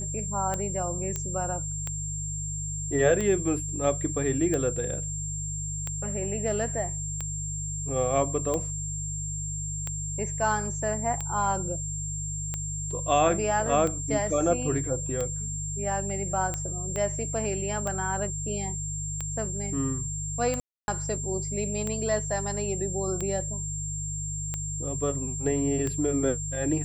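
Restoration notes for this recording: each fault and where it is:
hum 50 Hz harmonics 3 -35 dBFS
tick 45 rpm -17 dBFS
tone 7400 Hz -33 dBFS
1.16 pop -16 dBFS
16.96 pop -19 dBFS
20.6–20.88 gap 0.281 s

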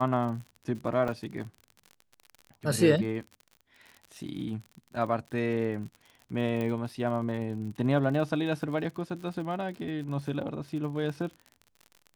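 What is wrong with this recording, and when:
crackle 54/s -38 dBFS
1.08 gap 3.3 ms
6.61 pop -21 dBFS

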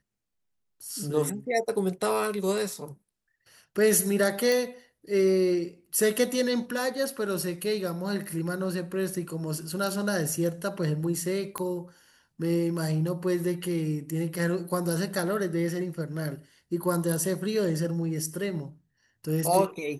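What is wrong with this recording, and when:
4.52 pop
11.58 pop -16 dBFS

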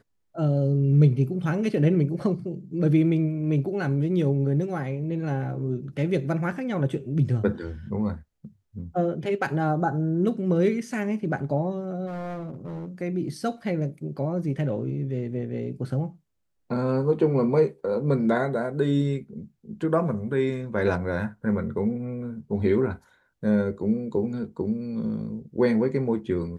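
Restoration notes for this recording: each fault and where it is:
12.06–12.88 clipped -30.5 dBFS

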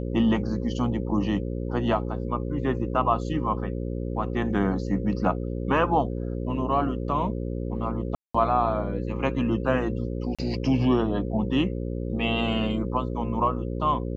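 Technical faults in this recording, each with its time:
buzz 60 Hz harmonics 9 -30 dBFS
8.15–8.35 gap 0.195 s
10.35–10.39 gap 36 ms

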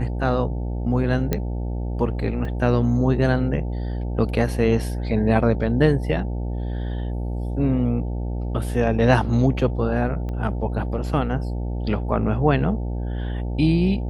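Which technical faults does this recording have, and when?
buzz 60 Hz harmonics 15 -26 dBFS
1.33 pop -8 dBFS
2.45 gap 2.2 ms
10.29 pop -21 dBFS

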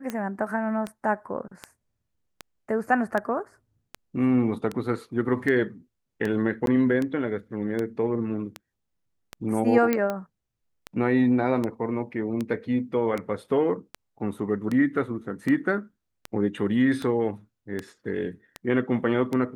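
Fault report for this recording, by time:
tick 78 rpm -16 dBFS
6.66–6.67 gap 12 ms
9.93 pop -10 dBFS

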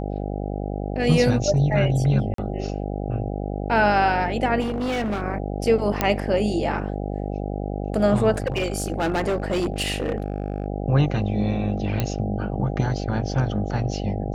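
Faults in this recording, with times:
buzz 50 Hz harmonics 16 -28 dBFS
2.34–2.38 gap 43 ms
4.6–5.23 clipped -22 dBFS
6.01 pop -5 dBFS
8.34–10.66 clipped -19 dBFS
12 pop -9 dBFS

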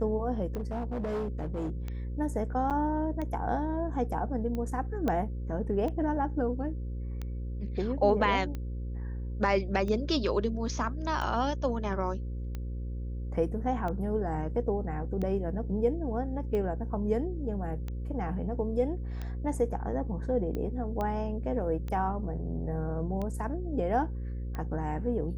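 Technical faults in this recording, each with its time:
buzz 60 Hz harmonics 9 -35 dBFS
tick 45 rpm -24 dBFS
0.56–1.7 clipped -29 dBFS
2.7–2.71 gap 7.4 ms
5.08 pop -18 dBFS
21.01 pop -21 dBFS

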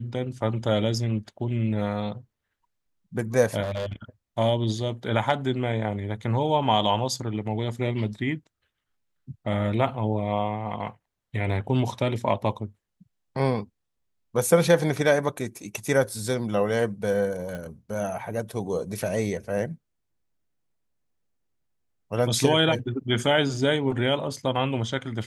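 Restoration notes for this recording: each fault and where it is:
3.62–3.93 clipped -25.5 dBFS
17.55 pop -23 dBFS

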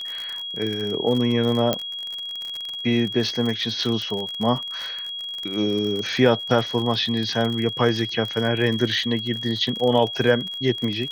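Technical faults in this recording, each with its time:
crackle 44/s -26 dBFS
tone 3300 Hz -29 dBFS
1.73 pop -7 dBFS

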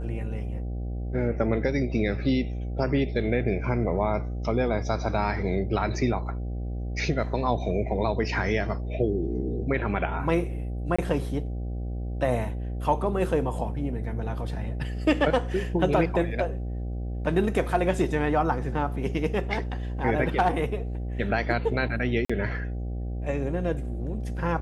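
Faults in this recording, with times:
buzz 60 Hz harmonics 13 -31 dBFS
10.96–10.98 gap 25 ms
22.25–22.3 gap 45 ms

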